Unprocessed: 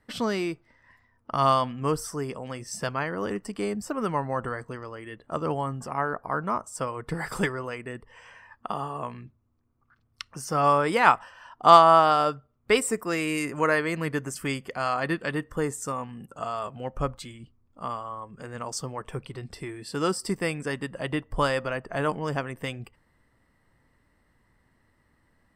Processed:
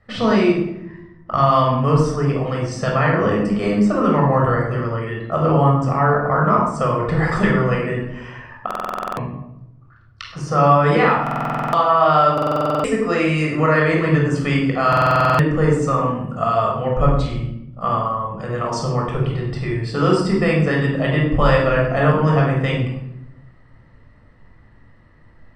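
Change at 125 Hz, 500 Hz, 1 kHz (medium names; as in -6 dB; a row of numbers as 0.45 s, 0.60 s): +16.5 dB, +9.5 dB, +6.0 dB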